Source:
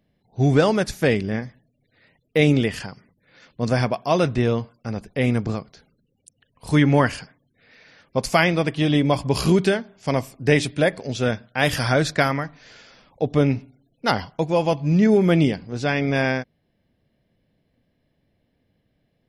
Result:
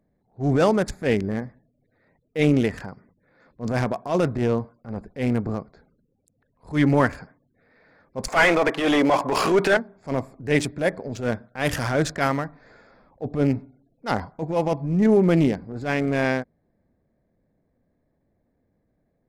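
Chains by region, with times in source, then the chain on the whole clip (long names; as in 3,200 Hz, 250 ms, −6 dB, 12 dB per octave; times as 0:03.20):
0:08.28–0:09.77: high-pass filter 590 Hz 6 dB per octave + mid-hump overdrive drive 25 dB, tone 1,100 Hz, clips at −3.5 dBFS
whole clip: adaptive Wiener filter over 15 samples; octave-band graphic EQ 125/4,000/8,000 Hz −4/−4/+3 dB; transient designer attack −11 dB, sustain +1 dB; level +1 dB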